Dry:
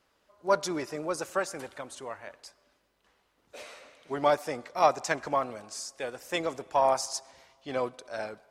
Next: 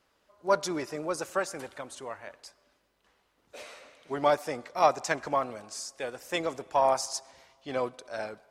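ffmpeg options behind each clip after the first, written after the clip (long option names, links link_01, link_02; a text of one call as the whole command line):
ffmpeg -i in.wav -af anull out.wav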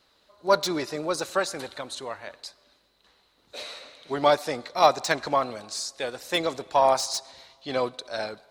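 ffmpeg -i in.wav -filter_complex "[0:a]equalizer=frequency=4000:width=3.9:gain=14.5,acrossover=split=2700[link_01][link_02];[link_02]asoftclip=type=hard:threshold=-28.5dB[link_03];[link_01][link_03]amix=inputs=2:normalize=0,volume=4dB" out.wav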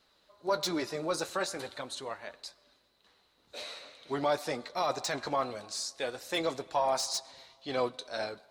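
ffmpeg -i in.wav -af "alimiter=limit=-16dB:level=0:latency=1:release=10,flanger=delay=4.3:depth=8.7:regen=-53:speed=0.43:shape=triangular" out.wav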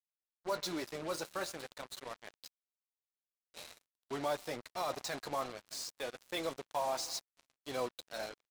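ffmpeg -i in.wav -af "aecho=1:1:611:0.0891,acrusher=bits=5:mix=0:aa=0.5,volume=-6.5dB" out.wav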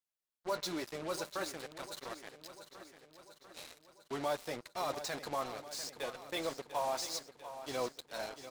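ffmpeg -i in.wav -af "aecho=1:1:695|1390|2085|2780|3475|4170:0.251|0.146|0.0845|0.049|0.0284|0.0165" out.wav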